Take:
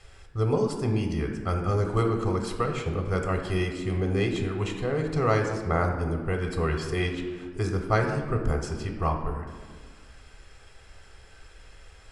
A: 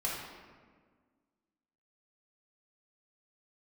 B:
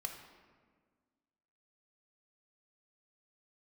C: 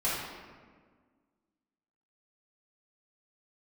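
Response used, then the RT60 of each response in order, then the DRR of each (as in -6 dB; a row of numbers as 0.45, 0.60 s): B; 1.6, 1.6, 1.6 s; -5.0, 3.5, -9.5 dB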